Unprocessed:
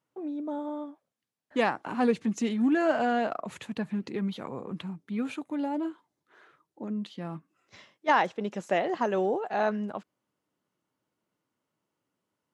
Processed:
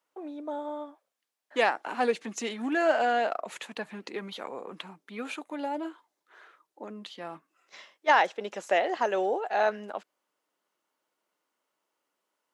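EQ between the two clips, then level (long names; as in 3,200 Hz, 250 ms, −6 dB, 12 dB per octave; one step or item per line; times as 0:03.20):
high-pass filter 510 Hz 12 dB per octave
dynamic equaliser 1,100 Hz, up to −5 dB, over −48 dBFS, Q 3.1
+4.0 dB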